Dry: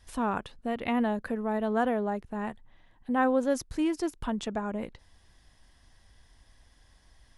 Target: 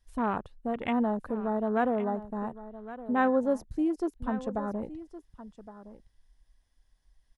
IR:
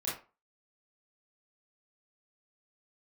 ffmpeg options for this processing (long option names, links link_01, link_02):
-af "afwtdn=0.0158,highshelf=frequency=7200:gain=5,aecho=1:1:1115:0.178"